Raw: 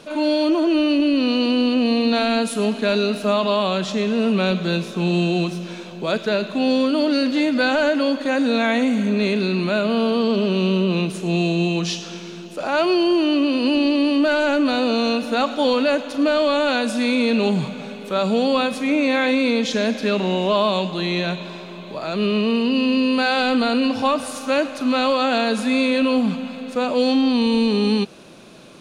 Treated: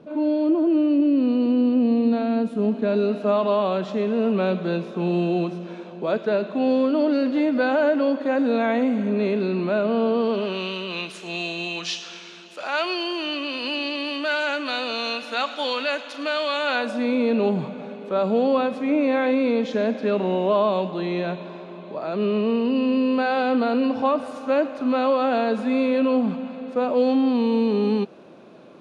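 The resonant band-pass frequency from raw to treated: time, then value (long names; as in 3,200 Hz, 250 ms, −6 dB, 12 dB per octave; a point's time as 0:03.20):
resonant band-pass, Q 0.58
0:02.61 210 Hz
0:03.32 510 Hz
0:10.14 510 Hz
0:10.75 2,400 Hz
0:16.59 2,400 Hz
0:17.05 500 Hz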